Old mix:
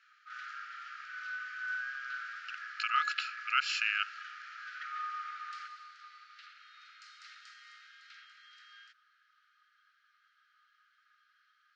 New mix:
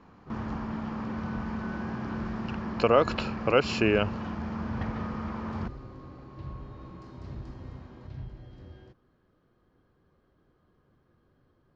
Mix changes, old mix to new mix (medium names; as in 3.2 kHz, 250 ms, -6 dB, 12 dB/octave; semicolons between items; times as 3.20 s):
background -10.0 dB; master: remove brick-wall FIR high-pass 1.2 kHz